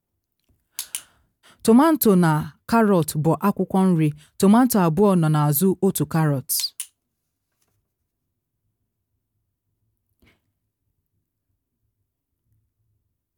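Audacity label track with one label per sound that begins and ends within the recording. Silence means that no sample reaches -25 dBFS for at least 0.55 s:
0.790000	0.970000	sound
1.650000	6.820000	sound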